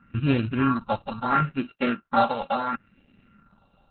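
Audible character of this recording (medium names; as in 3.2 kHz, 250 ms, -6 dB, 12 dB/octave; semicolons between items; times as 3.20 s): a buzz of ramps at a fixed pitch in blocks of 32 samples; phasing stages 4, 0.73 Hz, lowest notch 300–1100 Hz; Opus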